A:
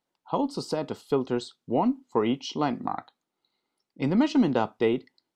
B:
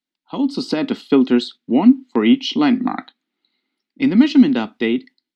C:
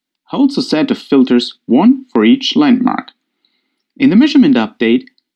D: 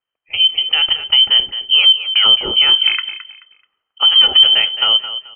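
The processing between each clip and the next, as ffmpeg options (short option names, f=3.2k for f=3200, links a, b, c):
-filter_complex "[0:a]agate=range=-7dB:threshold=-47dB:ratio=16:detection=peak,equalizer=f=125:t=o:w=1:g=-8,equalizer=f=250:t=o:w=1:g=11,equalizer=f=500:t=o:w=1:g=-8,equalizer=f=1k:t=o:w=1:g=-7,equalizer=f=2k:t=o:w=1:g=6,equalizer=f=4k:t=o:w=1:g=8,acrossover=split=170|3500[a][b][c];[b]dynaudnorm=f=220:g=5:m=15dB[d];[a][d][c]amix=inputs=3:normalize=0,volume=-1dB"
-af "alimiter=limit=-9dB:level=0:latency=1:release=33,volume=8dB"
-filter_complex "[0:a]afreqshift=-50,asplit=2[a][b];[b]aecho=0:1:216|432|648:0.251|0.0653|0.017[c];[a][c]amix=inputs=2:normalize=0,lowpass=f=2.8k:t=q:w=0.5098,lowpass=f=2.8k:t=q:w=0.6013,lowpass=f=2.8k:t=q:w=0.9,lowpass=f=2.8k:t=q:w=2.563,afreqshift=-3300,volume=-2.5dB"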